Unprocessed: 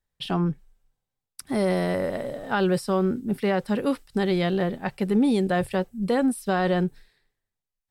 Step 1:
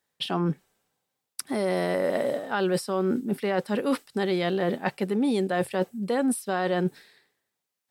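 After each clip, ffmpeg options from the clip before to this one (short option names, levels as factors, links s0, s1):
-af "highpass=230,areverse,acompressor=threshold=0.0282:ratio=6,areverse,volume=2.66"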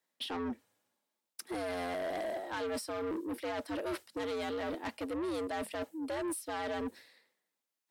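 -af "afreqshift=84,asoftclip=type=tanh:threshold=0.0398,volume=0.562"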